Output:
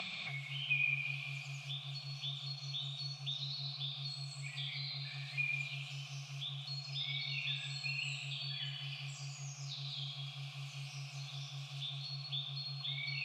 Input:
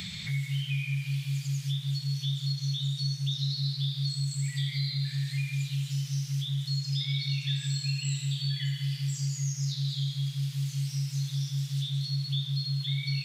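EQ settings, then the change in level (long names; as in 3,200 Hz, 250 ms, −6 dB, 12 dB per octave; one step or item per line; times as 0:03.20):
formant filter a
high-pass filter 120 Hz
+15.0 dB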